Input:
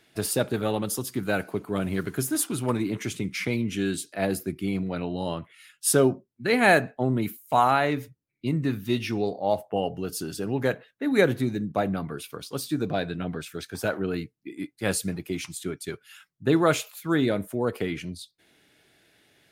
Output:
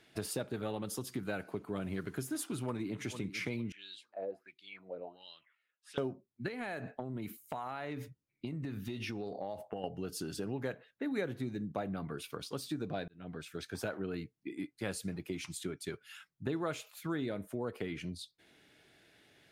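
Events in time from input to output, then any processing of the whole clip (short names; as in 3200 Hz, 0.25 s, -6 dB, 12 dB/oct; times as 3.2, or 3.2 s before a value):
2.52–3.04 echo throw 0.45 s, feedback 35%, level -15.5 dB
3.72–5.98 wah 1.4 Hz 480–4000 Hz, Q 6.2
6.48–9.84 compressor 8:1, threshold -30 dBFS
13.08–13.8 fade in
whole clip: high shelf 9000 Hz -8.5 dB; compressor 3:1, threshold -35 dBFS; gain -2 dB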